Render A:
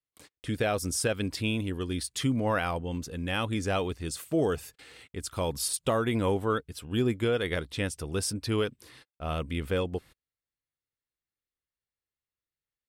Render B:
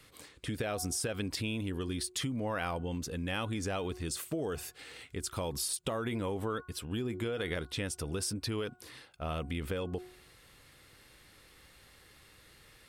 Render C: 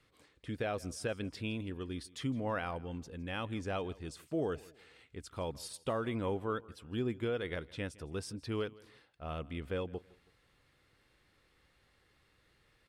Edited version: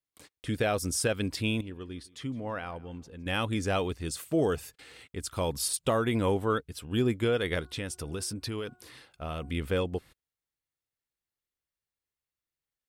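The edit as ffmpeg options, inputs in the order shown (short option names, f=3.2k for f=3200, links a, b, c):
-filter_complex "[0:a]asplit=3[a][b][c];[a]atrim=end=1.612[d];[2:a]atrim=start=1.608:end=3.262[e];[b]atrim=start=3.258:end=7.612[f];[1:a]atrim=start=7.608:end=9.502[g];[c]atrim=start=9.498[h];[d][e]acrossfade=d=0.004:c1=hsin:c2=hsin[i];[i][f]acrossfade=d=0.004:c1=hsin:c2=hsin[j];[j][g]acrossfade=d=0.004:c1=hsin:c2=hsin[k];[k][h]acrossfade=d=0.004:c1=hsin:c2=hsin"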